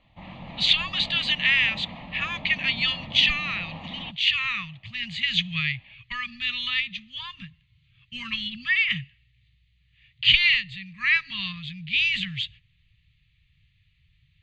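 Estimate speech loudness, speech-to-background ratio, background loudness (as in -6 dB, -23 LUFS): -23.5 LUFS, 17.0 dB, -40.5 LUFS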